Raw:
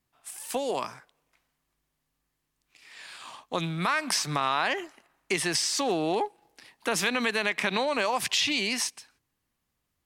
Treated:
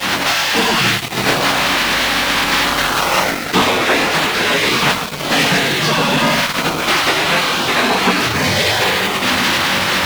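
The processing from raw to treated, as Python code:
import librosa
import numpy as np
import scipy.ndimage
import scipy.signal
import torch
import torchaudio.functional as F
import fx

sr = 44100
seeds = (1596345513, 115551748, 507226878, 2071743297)

p1 = x + 0.5 * 10.0 ** (-19.0 / 20.0) * np.diff(np.sign(x), prepend=np.sign(x[:1]))
p2 = scipy.signal.sosfilt(scipy.signal.butter(2, 68.0, 'highpass', fs=sr, output='sos'), p1)
p3 = fx.doubler(p2, sr, ms=21.0, db=-8.5)
p4 = fx.room_shoebox(p3, sr, seeds[0], volume_m3=200.0, walls='mixed', distance_m=5.3)
p5 = fx.spec_gate(p4, sr, threshold_db=-15, keep='weak')
p6 = fx.air_absorb(p5, sr, metres=250.0)
p7 = p6 + fx.echo_single(p6, sr, ms=104, db=-16.0, dry=0)
p8 = fx.quant_dither(p7, sr, seeds[1], bits=8, dither='none')
p9 = fx.low_shelf(p8, sr, hz=390.0, db=5.0)
p10 = fx.fuzz(p9, sr, gain_db=33.0, gate_db=-40.0)
p11 = p9 + (p10 * librosa.db_to_amplitude(-6.5))
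p12 = fx.rider(p11, sr, range_db=10, speed_s=0.5)
y = p12 * librosa.db_to_amplitude(3.5)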